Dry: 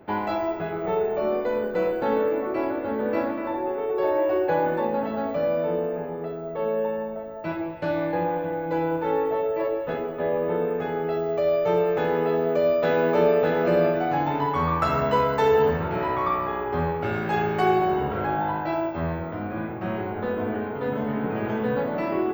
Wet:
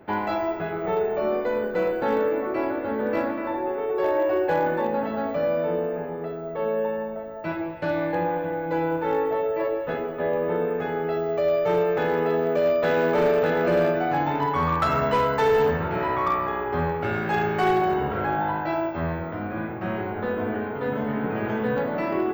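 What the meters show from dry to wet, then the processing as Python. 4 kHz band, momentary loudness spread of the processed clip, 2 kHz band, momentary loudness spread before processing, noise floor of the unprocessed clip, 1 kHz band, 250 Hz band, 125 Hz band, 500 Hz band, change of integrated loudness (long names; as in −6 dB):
+1.0 dB, 8 LU, +2.5 dB, 8 LU, −32 dBFS, +0.5 dB, 0.0 dB, 0.0 dB, 0.0 dB, 0.0 dB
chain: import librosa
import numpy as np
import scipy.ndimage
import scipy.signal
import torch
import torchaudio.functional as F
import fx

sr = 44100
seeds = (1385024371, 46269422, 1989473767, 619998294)

y = fx.peak_eq(x, sr, hz=1700.0, db=3.0, octaves=0.86)
y = np.clip(y, -10.0 ** (-15.5 / 20.0), 10.0 ** (-15.5 / 20.0))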